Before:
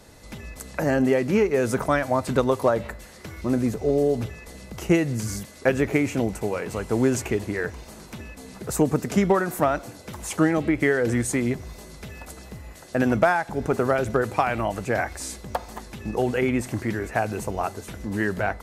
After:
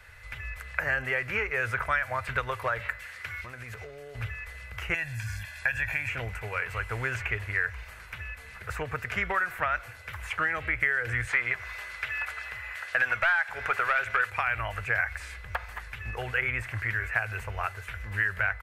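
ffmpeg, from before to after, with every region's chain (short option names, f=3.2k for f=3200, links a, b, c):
-filter_complex "[0:a]asettb=1/sr,asplit=3[a][b][c];[a]atrim=end=2.794[d];[b]atrim=start=2.79:end=4.15,asetpts=PTS-STARTPTS,afade=t=in:d=0.004:c=qsin,afade=t=out:st=1.356:d=0.004:c=qsin,highpass=100,equalizer=f=6.3k:t=o:w=2.9:g=4.5,acompressor=threshold=-27dB:ratio=6:attack=3.2:release=140:knee=1:detection=peak[e];[c]atrim=start=4.146[f];[d][e]acrossfade=d=0.004:c1=hsin:c2=qsin[g];[g][f]acrossfade=d=0.004:c1=qsin:c2=hsin,asettb=1/sr,asplit=3[h][i][j];[h]atrim=end=4.944[k];[i]atrim=start=4.94:end=6.09,asetpts=PTS-STARTPTS,afade=t=in:d=0.004:c=qsin,afade=t=out:st=1.146:d=0.004:c=qsin,highshelf=f=3.3k:g=10,aecho=1:1:1.2:0.78,atrim=end_sample=50715,acompressor=threshold=-29dB:ratio=2:attack=3.2:release=140:knee=1:detection=peak[l];[j]atrim=start=6.086[m];[k][l]acrossfade=d=0.004:c1=hsin:c2=qsin[n];[n][m]acrossfade=d=0.004:c1=qsin:c2=hsin,asettb=1/sr,asplit=3[o][p][q];[o]atrim=end=11.274[r];[p]atrim=start=11.27:end=14.3,asetpts=PTS-STARTPTS,afade=t=in:d=0.004:c=qsin,afade=t=out:st=3.026:d=0.004:c=qsin,lowshelf=f=330:g=-5,asplit=2[s][t];[t]highpass=f=720:p=1,volume=14dB,asoftclip=type=tanh:threshold=-7.5dB[u];[s][u]amix=inputs=2:normalize=0,lowpass=f=5.1k:p=1,volume=-6dB,asoftclip=type=hard:threshold=-11dB[v];[q]atrim=start=14.296[w];[r][v]acrossfade=d=0.004:c1=hsin:c2=qsin[x];[x][w]acrossfade=d=0.004:c1=qsin:c2=hsin,firequalizer=gain_entry='entry(100,0);entry(160,-18);entry(270,-27);entry(460,-12);entry(790,-9);entry(1500,8);entry(2400,7);entry(3700,-6);entry(6200,-12);entry(15000,-5)':delay=0.05:min_phase=1,acrossover=split=2100|4800[y][z][aa];[y]acompressor=threshold=-26dB:ratio=4[ab];[z]acompressor=threshold=-34dB:ratio=4[ac];[aa]acompressor=threshold=-54dB:ratio=4[ad];[ab][ac][ad]amix=inputs=3:normalize=0"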